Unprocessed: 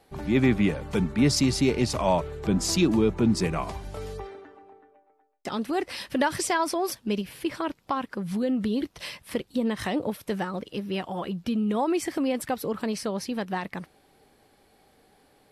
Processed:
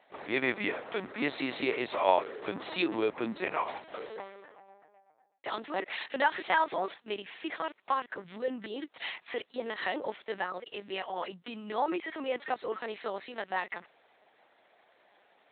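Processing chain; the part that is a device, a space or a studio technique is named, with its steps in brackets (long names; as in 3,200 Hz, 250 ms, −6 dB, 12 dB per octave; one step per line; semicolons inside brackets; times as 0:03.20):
talking toy (linear-prediction vocoder at 8 kHz pitch kept; high-pass filter 520 Hz 12 dB per octave; parametric band 1,900 Hz +4 dB 0.36 octaves)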